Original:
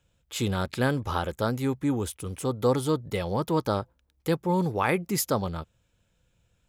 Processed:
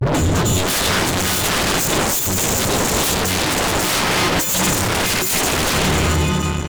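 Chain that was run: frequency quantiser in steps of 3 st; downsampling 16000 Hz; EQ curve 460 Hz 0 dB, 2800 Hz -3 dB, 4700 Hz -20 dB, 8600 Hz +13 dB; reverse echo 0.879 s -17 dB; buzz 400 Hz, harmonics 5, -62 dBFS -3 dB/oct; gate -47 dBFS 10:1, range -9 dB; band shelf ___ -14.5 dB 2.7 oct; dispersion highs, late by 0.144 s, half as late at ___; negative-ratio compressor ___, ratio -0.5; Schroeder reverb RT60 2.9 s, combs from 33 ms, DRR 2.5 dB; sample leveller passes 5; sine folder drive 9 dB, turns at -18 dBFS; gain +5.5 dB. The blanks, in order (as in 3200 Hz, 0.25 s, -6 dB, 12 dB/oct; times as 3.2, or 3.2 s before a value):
980 Hz, 310 Hz, -35 dBFS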